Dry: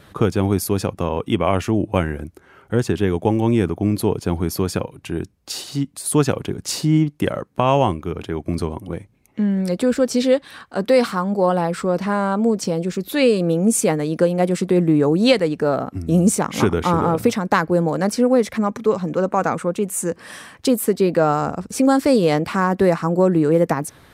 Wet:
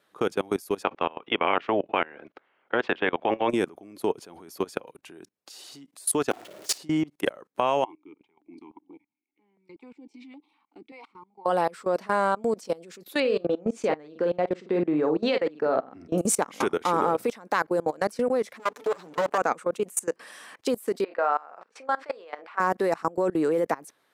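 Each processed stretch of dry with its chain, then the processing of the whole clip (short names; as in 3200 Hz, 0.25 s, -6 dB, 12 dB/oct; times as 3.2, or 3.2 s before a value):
0.82–3.49 spectral limiter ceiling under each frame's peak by 15 dB + LPF 3300 Hz 24 dB/oct
6.31–6.78 zero-crossing step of -22 dBFS + ring modulator 210 Hz + flutter echo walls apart 9.7 m, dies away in 0.46 s
7.84–11.46 vowel filter u + stepped notch 5.2 Hz 230–1700 Hz
13.2–16.18 air absorption 190 m + doubler 46 ms -7.5 dB
18.59–19.38 minimum comb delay 6.8 ms + high shelf 3300 Hz +3.5 dB
21.04–22.6 BPF 780–2200 Hz + doubler 34 ms -9.5 dB
whole clip: HPF 370 Hz 12 dB/oct; level quantiser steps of 23 dB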